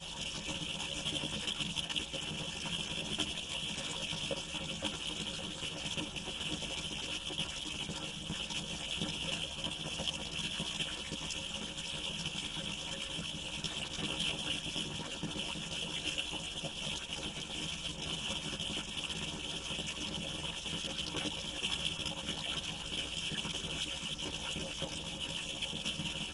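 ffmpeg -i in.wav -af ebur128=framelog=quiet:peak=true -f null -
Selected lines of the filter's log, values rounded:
Integrated loudness:
  I:         -37.1 LUFS
  Threshold: -47.1 LUFS
Loudness range:
  LRA:         1.4 LU
  Threshold: -57.1 LUFS
  LRA low:   -37.7 LUFS
  LRA high:  -36.3 LUFS
True peak:
  Peak:      -17.3 dBFS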